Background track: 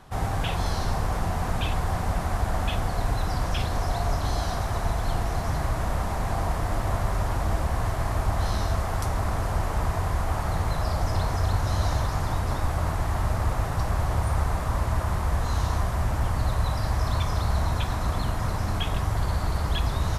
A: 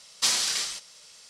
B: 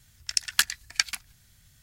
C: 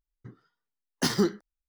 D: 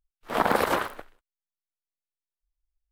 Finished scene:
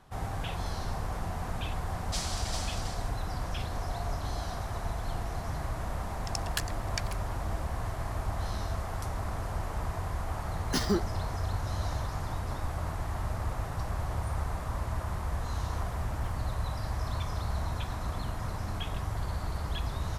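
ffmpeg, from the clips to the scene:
ffmpeg -i bed.wav -i cue0.wav -i cue1.wav -i cue2.wav -i cue3.wav -filter_complex "[0:a]volume=-8dB[link_01];[1:a]aecho=1:1:398:0.631[link_02];[4:a]aeval=exprs='val(0)*pow(10,-19*if(lt(mod(1.2*n/s,1),2*abs(1.2)/1000),1-mod(1.2*n/s,1)/(2*abs(1.2)/1000),(mod(1.2*n/s,1)-2*abs(1.2)/1000)/(1-2*abs(1.2)/1000))/20)':channel_layout=same[link_03];[link_02]atrim=end=1.29,asetpts=PTS-STARTPTS,volume=-13dB,afade=type=in:duration=0.004:curve=hsin,afade=type=out:start_time=1.286:duration=0.004:curve=hsin,adelay=1900[link_04];[2:a]atrim=end=1.82,asetpts=PTS-STARTPTS,volume=-12dB,afade=type=in:duration=0.004:curve=hsin,afade=type=out:start_time=1.816:duration=0.004:curve=hsin,adelay=5980[link_05];[3:a]atrim=end=1.68,asetpts=PTS-STARTPTS,volume=-4dB,afade=type=in:duration=0.004:curve=hsin,afade=type=out:start_time=1.676:duration=0.004:curve=hsin,adelay=9710[link_06];[link_03]atrim=end=2.91,asetpts=PTS-STARTPTS,volume=-14.5dB,afade=type=in:duration=0.004:curve=hsin,afade=type=out:start_time=2.906:duration=0.004:curve=hsin,adelay=15410[link_07];[link_01][link_04][link_05][link_06][link_07]amix=inputs=5:normalize=0" out.wav

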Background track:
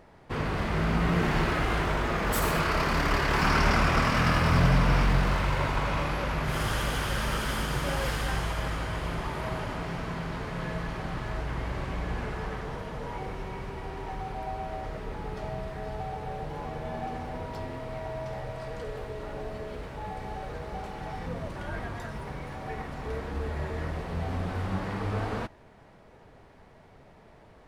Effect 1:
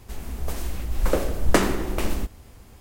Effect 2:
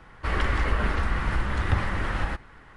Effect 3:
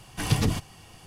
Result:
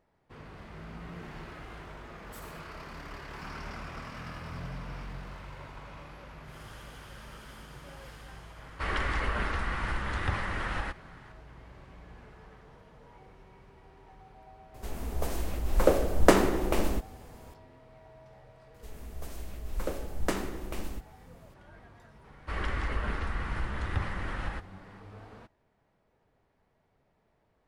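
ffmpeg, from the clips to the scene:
ffmpeg -i bed.wav -i cue0.wav -i cue1.wav -filter_complex "[2:a]asplit=2[link_01][link_02];[1:a]asplit=2[link_03][link_04];[0:a]volume=-18dB[link_05];[link_01]lowshelf=frequency=430:gain=-5.5[link_06];[link_03]equalizer=frequency=580:width=0.62:gain=6[link_07];[link_06]atrim=end=2.76,asetpts=PTS-STARTPTS,volume=-2.5dB,afade=type=in:duration=0.004:curve=hsin,afade=type=out:start_time=2.756:duration=0.004:curve=hsin,adelay=8560[link_08];[link_07]atrim=end=2.8,asetpts=PTS-STARTPTS,volume=-4dB,afade=type=in:duration=0.004:curve=hsin,afade=type=out:start_time=2.796:duration=0.004:curve=hsin,adelay=14740[link_09];[link_04]atrim=end=2.8,asetpts=PTS-STARTPTS,volume=-11.5dB,afade=type=in:duration=0.004:curve=hsin,afade=type=out:start_time=2.796:duration=0.004:curve=hsin,adelay=18740[link_10];[link_02]atrim=end=2.76,asetpts=PTS-STARTPTS,volume=-7.5dB,afade=type=in:duration=0.004:curve=hsin,afade=type=out:start_time=2.756:duration=0.004:curve=hsin,adelay=22240[link_11];[link_05][link_08][link_09][link_10][link_11]amix=inputs=5:normalize=0" out.wav

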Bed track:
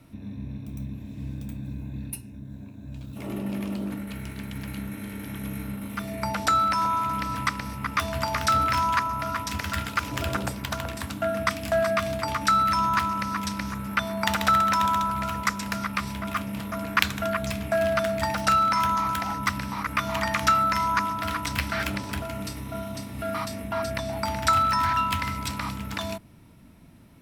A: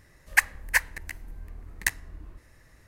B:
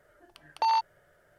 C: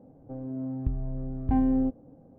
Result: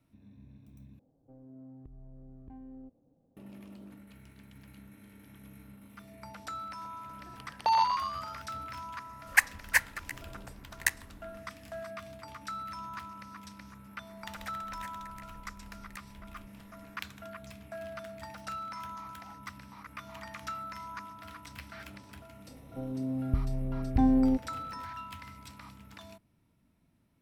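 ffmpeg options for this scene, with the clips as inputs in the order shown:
ffmpeg -i bed.wav -i cue0.wav -i cue1.wav -i cue2.wav -filter_complex "[3:a]asplit=2[link_01][link_02];[1:a]asplit=2[link_03][link_04];[0:a]volume=-18.5dB[link_05];[link_01]acompressor=threshold=-29dB:ratio=5:attack=6.1:release=107:knee=1:detection=rms[link_06];[2:a]asplit=9[link_07][link_08][link_09][link_10][link_11][link_12][link_13][link_14][link_15];[link_08]adelay=122,afreqshift=92,volume=-6dB[link_16];[link_09]adelay=244,afreqshift=184,volume=-10.4dB[link_17];[link_10]adelay=366,afreqshift=276,volume=-14.9dB[link_18];[link_11]adelay=488,afreqshift=368,volume=-19.3dB[link_19];[link_12]adelay=610,afreqshift=460,volume=-23.7dB[link_20];[link_13]adelay=732,afreqshift=552,volume=-28.2dB[link_21];[link_14]adelay=854,afreqshift=644,volume=-32.6dB[link_22];[link_15]adelay=976,afreqshift=736,volume=-37.1dB[link_23];[link_07][link_16][link_17][link_18][link_19][link_20][link_21][link_22][link_23]amix=inputs=9:normalize=0[link_24];[link_03]lowshelf=frequency=220:gain=-10[link_25];[link_04]acompressor=threshold=-42dB:ratio=4:attack=4.2:release=136:knee=1:detection=rms[link_26];[link_05]asplit=2[link_27][link_28];[link_27]atrim=end=0.994[link_29];[link_06]atrim=end=2.38,asetpts=PTS-STARTPTS,volume=-16.5dB[link_30];[link_28]atrim=start=3.366[link_31];[link_24]atrim=end=1.38,asetpts=PTS-STARTPTS,volume=-0.5dB,afade=type=in:duration=0.004:curve=hsin,afade=type=out:start_time=1.376:duration=0.004:curve=hsin,adelay=7040[link_32];[link_25]atrim=end=2.87,asetpts=PTS-STARTPTS,volume=-2dB,afade=type=in:duration=0.004:curve=hsin,afade=type=out:start_time=2.866:duration=0.004:curve=hsin,adelay=9000[link_33];[link_26]atrim=end=2.87,asetpts=PTS-STARTPTS,volume=-6dB,afade=type=in:duration=0.004:curve=hsin,afade=type=out:start_time=2.866:duration=0.004:curve=hsin,adelay=14090[link_34];[link_02]atrim=end=2.38,asetpts=PTS-STARTPTS,afade=type=in:duration=0.004:curve=hsin,afade=type=out:start_time=2.376:duration=0.004:curve=hsin,adelay=22470[link_35];[link_29][link_30]acrossfade=duration=0.004:curve1=hsin:curve2=hsin[link_36];[link_36][link_31]acrossfade=duration=0.004:curve1=hsin:curve2=hsin[link_37];[link_37][link_32][link_33][link_34][link_35]amix=inputs=5:normalize=0" out.wav

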